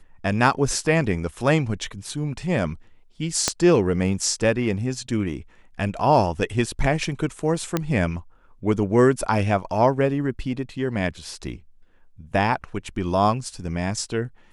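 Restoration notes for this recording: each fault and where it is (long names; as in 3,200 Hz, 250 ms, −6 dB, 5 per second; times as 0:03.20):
0:03.48: click −4 dBFS
0:07.77: click −7 dBFS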